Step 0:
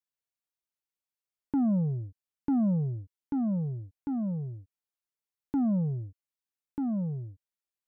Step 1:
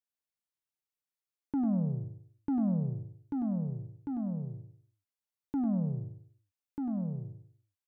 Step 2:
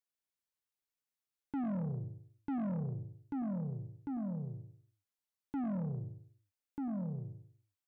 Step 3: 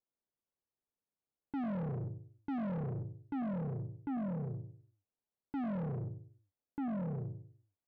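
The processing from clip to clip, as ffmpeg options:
-af "aecho=1:1:98|196|294|392:0.447|0.152|0.0516|0.0176,volume=-4dB"
-af "asoftclip=type=tanh:threshold=-31.5dB,volume=-1.5dB"
-filter_complex "[0:a]asoftclip=type=hard:threshold=-40dB,asplit=2[a][b];[b]highpass=f=720:p=1,volume=10dB,asoftclip=type=tanh:threshold=-40dB[c];[a][c]amix=inputs=2:normalize=0,lowpass=f=1.6k:p=1,volume=-6dB,adynamicsmooth=sensitivity=7.5:basefreq=550,volume=8.5dB"

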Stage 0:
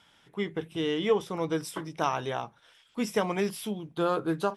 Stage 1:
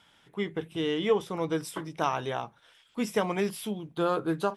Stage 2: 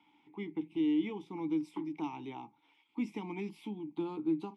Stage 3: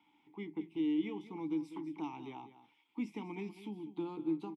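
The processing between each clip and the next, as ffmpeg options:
-af "equalizer=f=5.5k:t=o:w=0.26:g=-3"
-filter_complex "[0:a]acrossover=split=280|3000[a][b][c];[b]acompressor=threshold=-41dB:ratio=2.5[d];[a][d][c]amix=inputs=3:normalize=0,asplit=3[e][f][g];[e]bandpass=f=300:t=q:w=8,volume=0dB[h];[f]bandpass=f=870:t=q:w=8,volume=-6dB[i];[g]bandpass=f=2.24k:t=q:w=8,volume=-9dB[j];[h][i][j]amix=inputs=3:normalize=0,volume=8.5dB"
-af "aecho=1:1:197:0.211,volume=-3dB"

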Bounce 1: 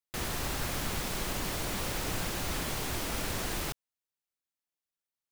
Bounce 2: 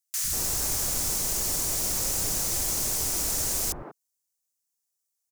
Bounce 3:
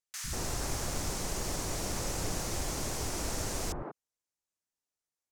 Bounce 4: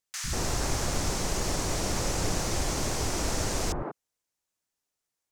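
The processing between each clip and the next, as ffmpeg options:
-filter_complex "[0:a]highshelf=f=4.6k:t=q:w=1.5:g=11.5,acrossover=split=200|1400[a][b][c];[a]adelay=100[d];[b]adelay=190[e];[d][e][c]amix=inputs=3:normalize=0"
-af "aemphasis=mode=reproduction:type=75fm"
-filter_complex "[0:a]acrossover=split=8200[a][b];[b]acompressor=threshold=-50dB:ratio=4:attack=1:release=60[c];[a][c]amix=inputs=2:normalize=0,volume=6dB"

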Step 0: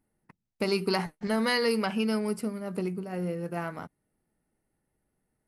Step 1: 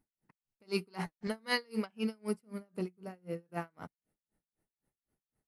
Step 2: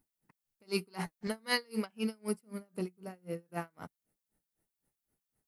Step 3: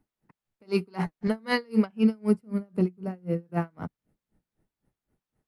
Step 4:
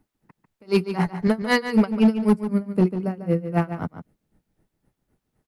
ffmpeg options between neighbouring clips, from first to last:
-af "aeval=exprs='val(0)*pow(10,-36*(0.5-0.5*cos(2*PI*3.9*n/s))/20)':c=same,volume=-2dB"
-af "highshelf=f=7.8k:g=9.5"
-filter_complex "[0:a]lowpass=f=1.5k:p=1,acrossover=split=280[a][b];[a]dynaudnorm=f=520:g=5:m=7dB[c];[c][b]amix=inputs=2:normalize=0,volume=8dB"
-filter_complex "[0:a]asoftclip=type=hard:threshold=-17.5dB,asplit=2[a][b];[b]adelay=145.8,volume=-10dB,highshelf=f=4k:g=-3.28[c];[a][c]amix=inputs=2:normalize=0,volume=6.5dB"

